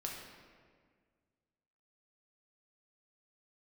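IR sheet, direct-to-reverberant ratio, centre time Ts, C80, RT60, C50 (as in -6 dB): -2.0 dB, 69 ms, 4.0 dB, 1.8 s, 2.0 dB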